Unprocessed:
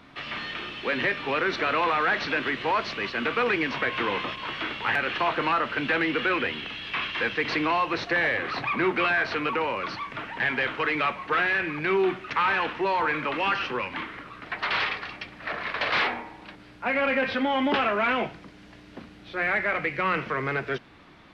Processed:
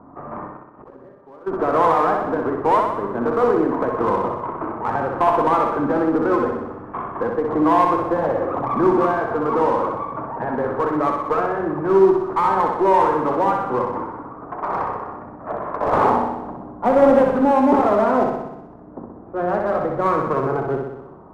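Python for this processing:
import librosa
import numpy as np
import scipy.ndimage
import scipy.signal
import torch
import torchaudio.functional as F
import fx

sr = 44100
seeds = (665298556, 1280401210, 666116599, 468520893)

p1 = fx.halfwave_hold(x, sr, at=(15.84, 17.3), fade=0.02)
p2 = scipy.signal.sosfilt(scipy.signal.butter(6, 1100.0, 'lowpass', fs=sr, output='sos'), p1)
p3 = fx.low_shelf(p2, sr, hz=150.0, db=-6.5)
p4 = np.clip(10.0 ** (27.5 / 20.0) * p3, -1.0, 1.0) / 10.0 ** (27.5 / 20.0)
p5 = p3 + F.gain(torch.from_numpy(p4), -4.5).numpy()
p6 = fx.cheby_harmonics(p5, sr, harmonics=(4, 7), levels_db=(-24, -34), full_scale_db=-13.0)
p7 = fx.gate_flip(p6, sr, shuts_db=-31.0, range_db=-24, at=(0.47, 1.46), fade=0.02)
p8 = fx.room_flutter(p7, sr, wall_m=10.7, rt60_s=0.91)
p9 = fx.end_taper(p8, sr, db_per_s=140.0)
y = F.gain(torch.from_numpy(p9), 6.5).numpy()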